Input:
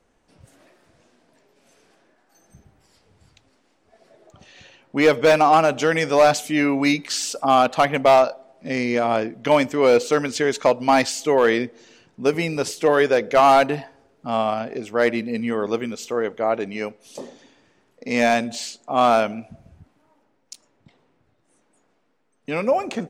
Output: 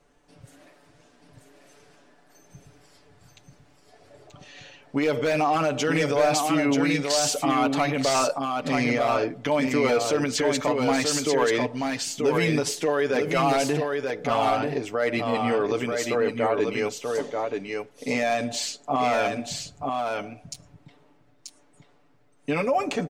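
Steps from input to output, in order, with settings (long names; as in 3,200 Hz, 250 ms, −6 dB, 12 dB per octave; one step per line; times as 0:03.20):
comb filter 6.9 ms, depth 69%
brickwall limiter −15 dBFS, peak gain reduction 11.5 dB
single-tap delay 935 ms −4 dB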